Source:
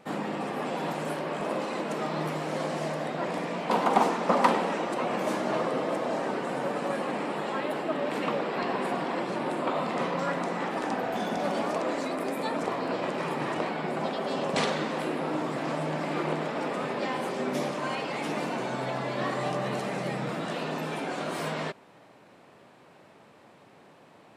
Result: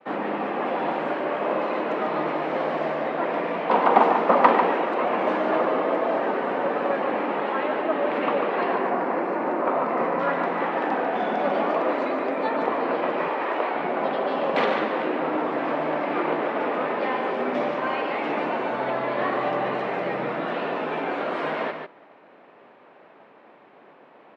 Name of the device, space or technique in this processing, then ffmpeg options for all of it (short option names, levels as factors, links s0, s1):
hearing-loss simulation: -filter_complex "[0:a]asettb=1/sr,asplit=3[s0][s1][s2];[s0]atrim=end=8.754[s3];[s1]atrim=start=8.75:end=10.2,asetpts=PTS-STARTPTS,afade=t=in:d=0.004:c=qsin,afade=t=out:st=1.446:d=0.004:c=qsin,equalizer=f=3400:t=o:w=0.75:g=-11.5[s4];[s2]atrim=start=10.196[s5];[s3][s4]acrossfade=d=0.004:c1=hsin:c2=qsin[s6];[s6][s5]acrossfade=d=0.004:c1=qsin:c2=hsin,lowpass=3400,agate=range=0.0224:threshold=0.00251:ratio=3:detection=peak,aecho=1:1:144:0.447,asettb=1/sr,asplit=3[s7][s8][s9];[s7]atrim=end=13.284[s10];[s8]atrim=start=13.28:end=13.75,asetpts=PTS-STARTPTS,afade=t=in:d=0.004:c=qsin,afade=t=out:st=0.466:d=0.004:c=qsin,highpass=350[s11];[s9]atrim=start=13.746[s12];[s10][s11]acrossfade=d=0.004:c1=hsin:c2=qsin[s13];[s13][s12]acrossfade=d=0.004:c1=qsin:c2=hsin,acrossover=split=240 3200:gain=0.126 1 0.224[s14][s15][s16];[s14][s15][s16]amix=inputs=3:normalize=0,volume=2"